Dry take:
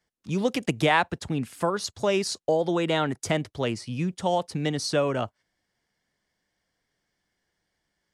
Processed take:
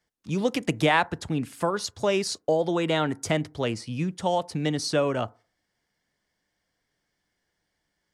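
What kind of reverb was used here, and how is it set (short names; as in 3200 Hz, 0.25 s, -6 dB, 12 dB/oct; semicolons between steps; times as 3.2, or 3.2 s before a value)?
FDN reverb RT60 0.4 s, low-frequency decay 0.9×, high-frequency decay 0.3×, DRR 19 dB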